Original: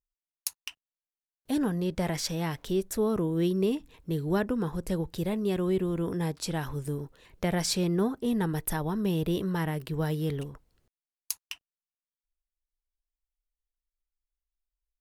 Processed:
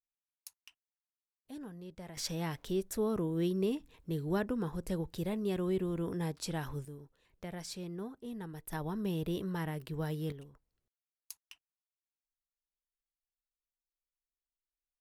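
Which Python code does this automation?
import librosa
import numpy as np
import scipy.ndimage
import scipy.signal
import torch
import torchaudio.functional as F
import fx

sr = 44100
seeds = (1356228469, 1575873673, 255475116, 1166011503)

y = fx.gain(x, sr, db=fx.steps((0.0, -18.0), (2.17, -5.5), (6.85, -15.0), (8.73, -7.0), (10.32, -15.0)))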